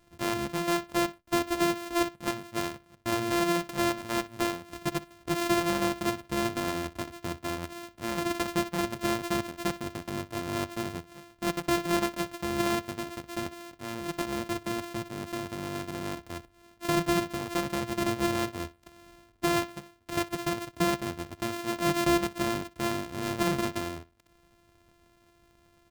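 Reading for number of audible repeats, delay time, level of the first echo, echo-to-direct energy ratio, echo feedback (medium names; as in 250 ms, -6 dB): 2, 61 ms, -19.5 dB, -19.5 dB, 18%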